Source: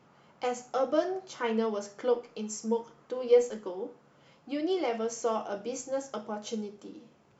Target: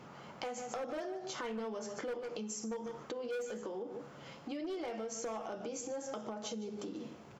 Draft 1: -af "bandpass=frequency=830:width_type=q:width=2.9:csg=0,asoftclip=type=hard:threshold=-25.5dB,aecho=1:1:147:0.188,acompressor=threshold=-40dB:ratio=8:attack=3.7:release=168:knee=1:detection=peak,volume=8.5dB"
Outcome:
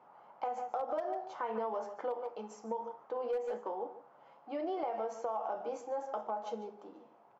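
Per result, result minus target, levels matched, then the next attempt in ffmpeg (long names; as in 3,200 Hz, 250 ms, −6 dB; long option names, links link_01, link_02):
downward compressor: peak gain reduction −6.5 dB; 1,000 Hz band +5.5 dB
-af "bandpass=frequency=830:width_type=q:width=2.9:csg=0,asoftclip=type=hard:threshold=-25.5dB,aecho=1:1:147:0.188,acompressor=threshold=-46.5dB:ratio=8:attack=3.7:release=168:knee=1:detection=peak,volume=8.5dB"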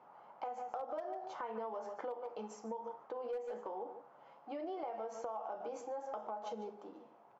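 1,000 Hz band +5.5 dB
-af "asoftclip=type=hard:threshold=-25.5dB,aecho=1:1:147:0.188,acompressor=threshold=-46.5dB:ratio=8:attack=3.7:release=168:knee=1:detection=peak,volume=8.5dB"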